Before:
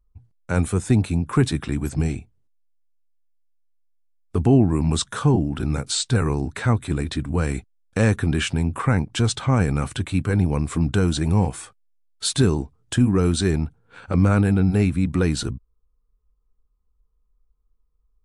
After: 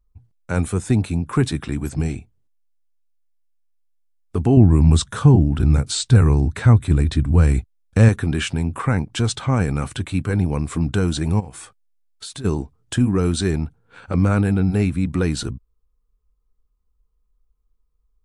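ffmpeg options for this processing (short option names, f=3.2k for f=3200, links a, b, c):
-filter_complex "[0:a]asettb=1/sr,asplit=3[a][b][c];[a]atrim=end=4.574[d];[b]atrim=start=4.57:end=8.09,asetpts=PTS-STARTPTS,afade=t=in:d=0.004:c=qsin,afade=t=out:st=3.516:d=0.004:c=qsin,equalizer=f=60:w=0.43:g=12[e];[c]atrim=start=8.086[f];[d][e]acrossfade=d=0.004:c1=hsin:c2=qsin[g];[g][f]acrossfade=d=0.004:c1=qsin:c2=hsin,asplit=3[h][i][j];[h]afade=t=out:st=11.39:d=0.02[k];[i]acompressor=threshold=-32dB:ratio=5:attack=3.2:release=140:knee=1:detection=peak,afade=t=in:st=11.39:d=0.02,afade=t=out:st=12.44:d=0.02[l];[j]afade=t=in:st=12.44:d=0.02[m];[k][l][m]amix=inputs=3:normalize=0"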